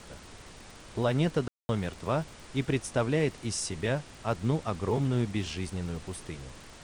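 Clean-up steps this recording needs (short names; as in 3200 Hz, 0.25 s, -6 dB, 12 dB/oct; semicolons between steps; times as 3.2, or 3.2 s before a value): de-click; room tone fill 1.48–1.69; noise print and reduce 26 dB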